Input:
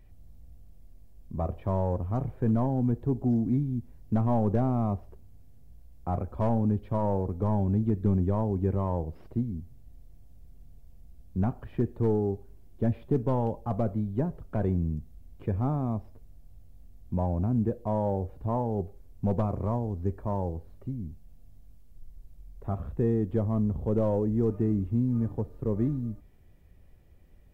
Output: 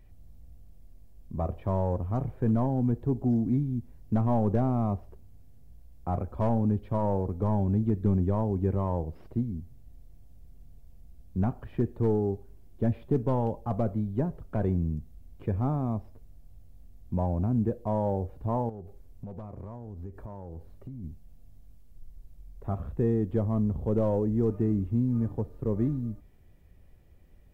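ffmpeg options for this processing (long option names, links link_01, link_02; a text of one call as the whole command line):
ffmpeg -i in.wav -filter_complex "[0:a]asettb=1/sr,asplit=3[link_01][link_02][link_03];[link_01]atrim=end=18.694[link_04];[link_02]atrim=start=18.69:end=21.04,asetpts=PTS-STARTPTS,afade=type=in:duration=0.004:curve=qsin,afade=type=out:start_time=2.346:duration=0.004:curve=qsin,acompressor=threshold=-36dB:ratio=10:attack=3.2:release=140:knee=1:detection=peak[link_05];[link_03]atrim=start=21.036[link_06];[link_04][link_05]acrossfade=duration=0.004:curve1=hsin:curve2=qsin[link_07];[link_07][link_06]acrossfade=duration=0.004:curve1=qsin:curve2=hsin" out.wav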